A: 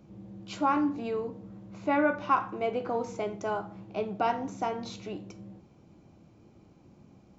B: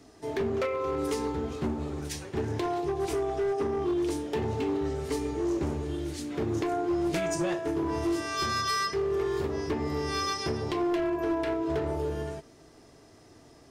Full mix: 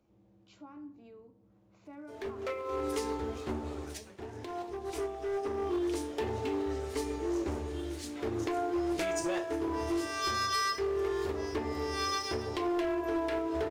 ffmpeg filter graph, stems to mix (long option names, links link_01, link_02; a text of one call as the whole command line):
ffmpeg -i stem1.wav -i stem2.wav -filter_complex "[0:a]acrossover=split=300[link_01][link_02];[link_02]acompressor=threshold=-54dB:ratio=2[link_03];[link_01][link_03]amix=inputs=2:normalize=0,volume=-12dB,asplit=3[link_04][link_05][link_06];[link_04]atrim=end=2.62,asetpts=PTS-STARTPTS,afade=type=out:start_time=2.616:duration=0.004:curve=hsin[link_07];[link_05]atrim=start=2.62:end=3.82,asetpts=PTS-STARTPTS,volume=0[link_08];[link_06]atrim=start=3.82,asetpts=PTS-STARTPTS,afade=type=in:duration=0.004:curve=hsin[link_09];[link_07][link_08][link_09]concat=n=3:v=0:a=1,asplit=2[link_10][link_11];[1:a]aeval=exprs='sgn(val(0))*max(abs(val(0))-0.00224,0)':channel_layout=same,adelay=1850,volume=-1.5dB[link_12];[link_11]apad=whole_len=685815[link_13];[link_12][link_13]sidechaincompress=threshold=-56dB:ratio=5:attack=16:release=281[link_14];[link_10][link_14]amix=inputs=2:normalize=0,equalizer=frequency=160:width=1.7:gain=-14" out.wav